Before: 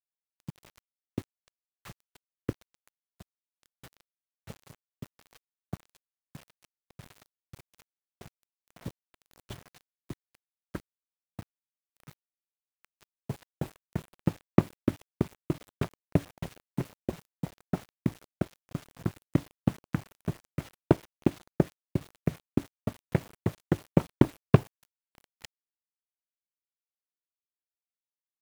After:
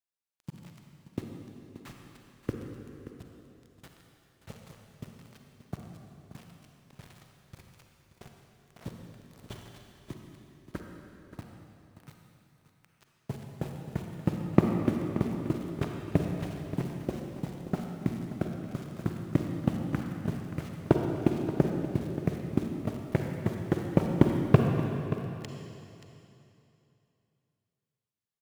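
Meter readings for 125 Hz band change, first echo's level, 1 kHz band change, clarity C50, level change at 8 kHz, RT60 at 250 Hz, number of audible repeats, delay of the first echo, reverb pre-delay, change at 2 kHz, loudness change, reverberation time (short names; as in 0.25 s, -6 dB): +1.0 dB, -13.0 dB, +1.5 dB, 2.0 dB, 0.0 dB, 2.9 s, 1, 0.579 s, 33 ms, +1.0 dB, +1.0 dB, 2.9 s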